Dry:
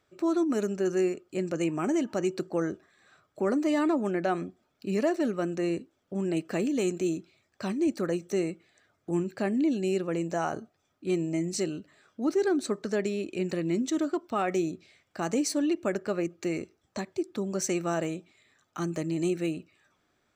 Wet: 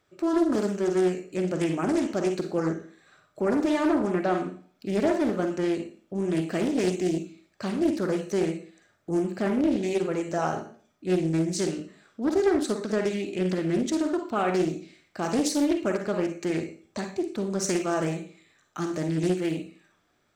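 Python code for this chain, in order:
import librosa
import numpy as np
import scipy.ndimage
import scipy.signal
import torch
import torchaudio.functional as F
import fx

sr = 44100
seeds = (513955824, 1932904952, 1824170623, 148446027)

y = fx.rev_schroeder(x, sr, rt60_s=0.45, comb_ms=38, drr_db=4.5)
y = fx.doppler_dist(y, sr, depth_ms=0.36)
y = y * 10.0 ** (1.5 / 20.0)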